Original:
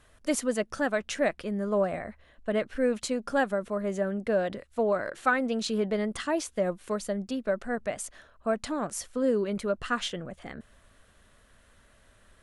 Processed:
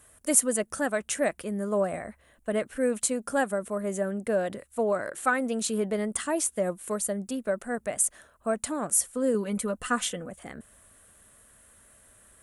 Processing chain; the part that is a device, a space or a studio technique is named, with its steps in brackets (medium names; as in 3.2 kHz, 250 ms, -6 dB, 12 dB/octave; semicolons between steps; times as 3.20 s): budget condenser microphone (high-pass 62 Hz 6 dB/octave; resonant high shelf 6.6 kHz +12.5 dB, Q 1.5); 9.34–10.29 s: comb 4 ms, depth 62%